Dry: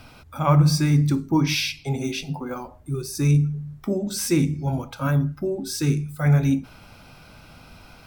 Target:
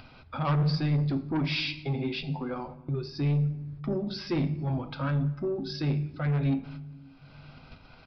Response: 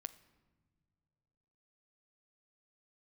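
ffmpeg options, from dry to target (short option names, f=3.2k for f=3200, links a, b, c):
-filter_complex "[0:a]agate=range=-28dB:threshold=-41dB:ratio=16:detection=peak,acompressor=mode=upward:threshold=-25dB:ratio=2.5,aresample=11025,asoftclip=type=tanh:threshold=-18.5dB,aresample=44100[a];[1:a]atrim=start_sample=2205[b];[a][b]afir=irnorm=-1:irlink=0"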